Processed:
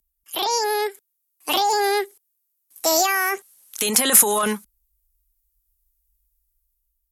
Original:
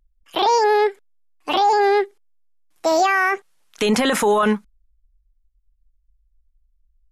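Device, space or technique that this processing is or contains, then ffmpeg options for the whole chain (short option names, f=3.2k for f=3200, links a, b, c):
FM broadcast chain: -filter_complex "[0:a]highpass=f=70:p=1,dynaudnorm=f=430:g=5:m=6.5dB,acrossover=split=250|650[a][b][c];[a]acompressor=threshold=-21dB:ratio=4[d];[b]acompressor=threshold=-17dB:ratio=4[e];[c]acompressor=threshold=-14dB:ratio=4[f];[d][e][f]amix=inputs=3:normalize=0,aemphasis=mode=production:type=50fm,alimiter=limit=-3.5dB:level=0:latency=1:release=193,asoftclip=type=hard:threshold=-7.5dB,lowpass=f=15k:w=0.5412,lowpass=f=15k:w=1.3066,aemphasis=mode=production:type=50fm,volume=-7dB"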